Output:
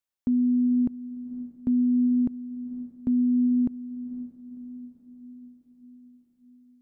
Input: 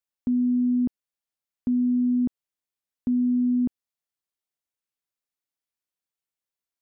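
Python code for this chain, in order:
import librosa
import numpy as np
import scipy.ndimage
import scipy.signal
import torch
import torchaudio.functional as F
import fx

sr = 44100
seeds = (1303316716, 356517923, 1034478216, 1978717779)

y = fx.echo_diffused(x, sr, ms=516, feedback_pct=55, wet_db=-14.5)
y = fx.quant_float(y, sr, bits=8)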